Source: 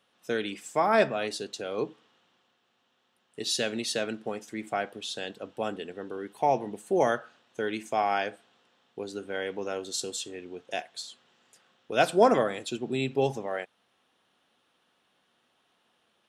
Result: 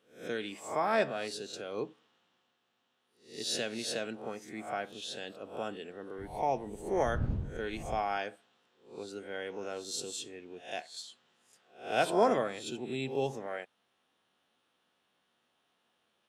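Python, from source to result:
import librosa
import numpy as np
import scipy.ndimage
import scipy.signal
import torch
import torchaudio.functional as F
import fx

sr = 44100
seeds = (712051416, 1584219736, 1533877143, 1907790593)

y = fx.spec_swells(x, sr, rise_s=0.42)
y = fx.dmg_wind(y, sr, seeds[0], corner_hz=120.0, level_db=-31.0, at=(6.18, 8.17), fade=0.02)
y = y * 10.0 ** (-7.0 / 20.0)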